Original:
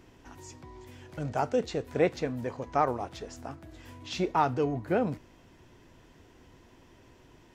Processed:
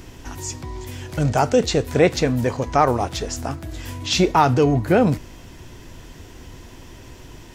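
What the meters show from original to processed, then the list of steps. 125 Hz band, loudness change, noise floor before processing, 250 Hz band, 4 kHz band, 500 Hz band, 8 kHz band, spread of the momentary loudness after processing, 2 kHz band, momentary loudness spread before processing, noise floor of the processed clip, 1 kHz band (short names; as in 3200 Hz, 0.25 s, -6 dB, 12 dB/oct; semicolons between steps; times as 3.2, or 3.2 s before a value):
+15.0 dB, +10.5 dB, -58 dBFS, +12.0 dB, +16.5 dB, +10.5 dB, +19.0 dB, 15 LU, +12.0 dB, 20 LU, -42 dBFS, +9.5 dB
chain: high shelf 3600 Hz +10 dB; in parallel at 0 dB: limiter -21 dBFS, peak gain reduction 10.5 dB; on the sum: low shelf 110 Hz +10 dB; gain +5.5 dB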